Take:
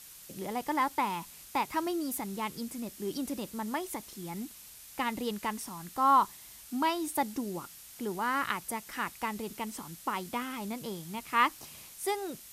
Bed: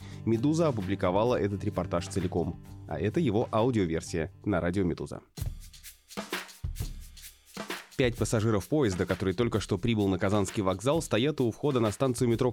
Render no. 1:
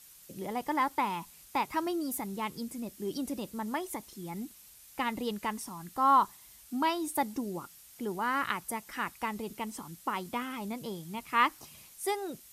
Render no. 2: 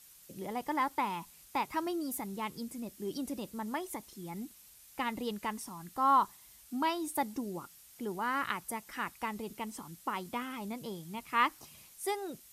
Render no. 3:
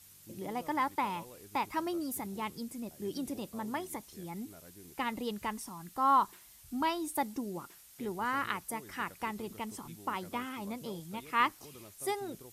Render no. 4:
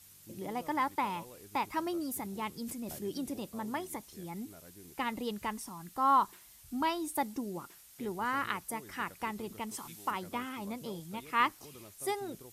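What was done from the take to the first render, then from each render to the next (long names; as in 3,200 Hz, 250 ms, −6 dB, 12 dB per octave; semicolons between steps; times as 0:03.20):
broadband denoise 6 dB, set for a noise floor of −51 dBFS
level −2.5 dB
mix in bed −26.5 dB
0:02.63–0:03.08: level that may fall only so fast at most 43 dB per second; 0:09.71–0:10.11: tilt shelving filter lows −5.5 dB, about 630 Hz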